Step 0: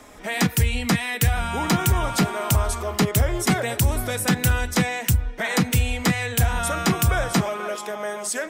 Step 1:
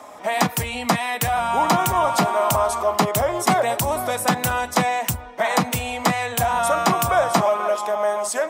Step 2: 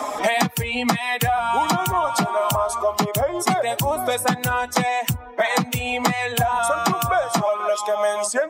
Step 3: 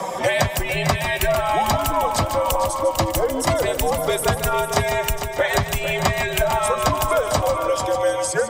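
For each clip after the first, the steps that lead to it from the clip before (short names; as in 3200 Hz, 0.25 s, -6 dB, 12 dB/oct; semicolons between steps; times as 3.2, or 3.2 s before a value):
Bessel high-pass 180 Hz, order 2; band shelf 820 Hz +10 dB 1.3 oct
per-bin expansion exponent 1.5; three-band squash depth 100%; gain +1 dB
multi-head echo 0.15 s, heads first and third, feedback 49%, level -10 dB; frequency shift -86 Hz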